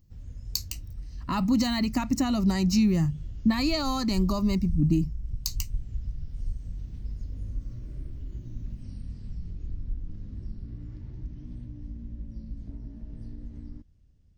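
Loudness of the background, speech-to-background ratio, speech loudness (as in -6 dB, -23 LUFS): -40.0 LUFS, 13.5 dB, -26.5 LUFS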